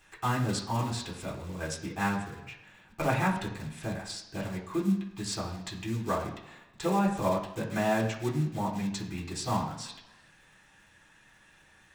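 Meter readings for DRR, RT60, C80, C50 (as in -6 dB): -4.0 dB, 1.0 s, 10.5 dB, 7.5 dB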